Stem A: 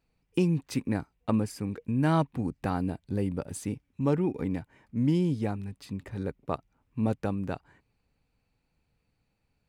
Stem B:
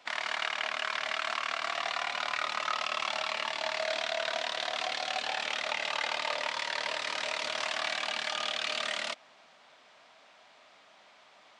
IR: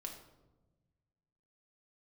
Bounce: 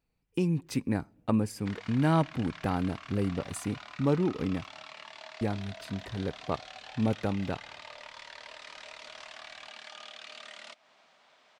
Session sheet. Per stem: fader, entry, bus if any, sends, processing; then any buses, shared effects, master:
-5.5 dB, 0.00 s, muted 4.71–5.41 s, send -23 dB, none
-10.0 dB, 1.60 s, send -16.5 dB, compression 4:1, threshold -40 dBFS, peak gain reduction 11.5 dB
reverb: on, RT60 1.1 s, pre-delay 5 ms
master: level rider gain up to 5 dB

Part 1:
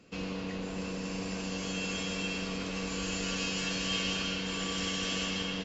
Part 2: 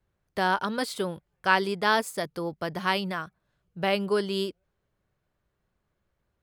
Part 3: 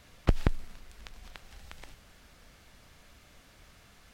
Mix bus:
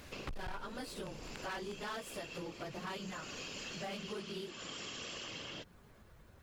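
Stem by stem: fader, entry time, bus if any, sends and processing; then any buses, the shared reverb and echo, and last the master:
+1.5 dB, 0.00 s, no send, high-pass 260 Hz; whisper effect; auto duck -6 dB, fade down 0.30 s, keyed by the second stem
-3.0 dB, 0.00 s, no send, phase randomisation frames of 50 ms; upward compressor, threshold -40 dBFS
+2.5 dB, 0.00 s, no send, none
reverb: none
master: hard clipper -24 dBFS, distortion -7 dB; compression 4:1, threshold -43 dBFS, peak gain reduction 14 dB

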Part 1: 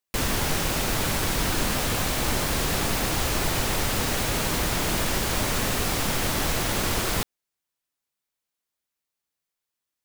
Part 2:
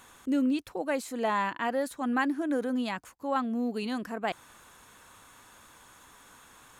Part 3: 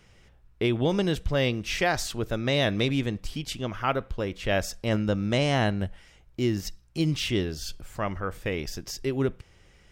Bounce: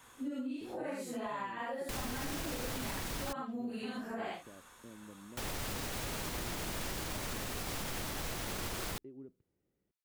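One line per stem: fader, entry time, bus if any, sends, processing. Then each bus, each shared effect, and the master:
-11.5 dB, 1.75 s, muted 3.33–5.37 s, no send, none
-3.5 dB, 0.00 s, no send, phase randomisation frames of 200 ms; compression 6:1, threshold -33 dBFS, peak gain reduction 10.5 dB
-14.0 dB, 0.00 s, no send, compression 4:1, threshold -31 dBFS, peak gain reduction 10.5 dB; band-pass filter 280 Hz, Q 1.7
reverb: none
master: peak limiter -29 dBFS, peak gain reduction 6.5 dB

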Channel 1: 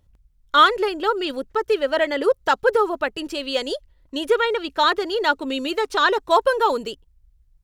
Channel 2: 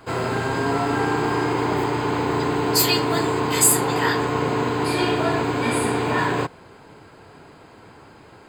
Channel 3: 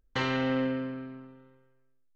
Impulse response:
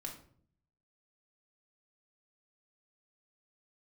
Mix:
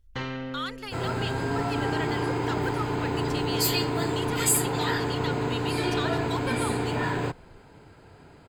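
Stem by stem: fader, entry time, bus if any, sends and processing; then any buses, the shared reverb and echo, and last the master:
-4.5 dB, 0.00 s, no send, amplifier tone stack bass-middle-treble 10-0-10; peak limiter -19.5 dBFS, peak gain reduction 11 dB
-7.0 dB, 0.85 s, no send, band-stop 1.1 kHz, Q 10
-1.5 dB, 0.00 s, no send, auto duck -11 dB, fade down 0.75 s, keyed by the first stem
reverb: none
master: bass shelf 110 Hz +11.5 dB

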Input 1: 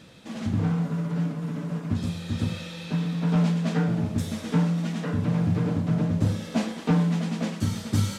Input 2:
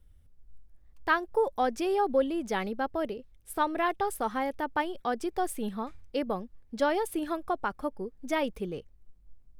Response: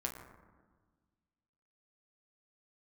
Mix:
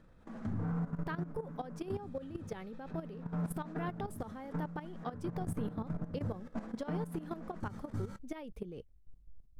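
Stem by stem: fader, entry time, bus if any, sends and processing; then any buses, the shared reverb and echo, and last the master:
+1.5 dB, 0.00 s, no send, resonant high shelf 2.1 kHz -12 dB, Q 1.5; auto duck -10 dB, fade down 1.65 s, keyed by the second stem
+1.0 dB, 0.00 s, no send, bass shelf 460 Hz +8 dB; compression 20:1, threshold -30 dBFS, peak gain reduction 15 dB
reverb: none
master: gate -38 dBFS, range -7 dB; level held to a coarse grid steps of 15 dB; peak limiter -28.5 dBFS, peak gain reduction 10.5 dB

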